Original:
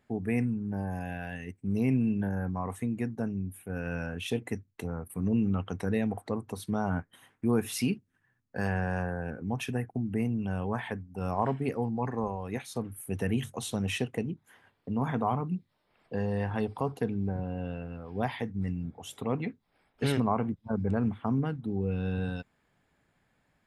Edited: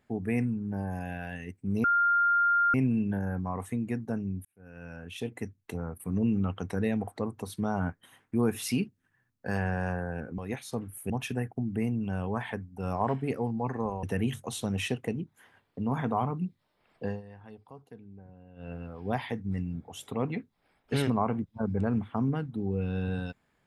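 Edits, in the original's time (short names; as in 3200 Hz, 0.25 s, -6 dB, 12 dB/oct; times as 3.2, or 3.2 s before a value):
1.84 add tone 1400 Hz -21 dBFS 0.90 s
3.55–4.83 fade in
12.41–13.13 move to 9.48
16.16–17.82 dip -18 dB, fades 0.16 s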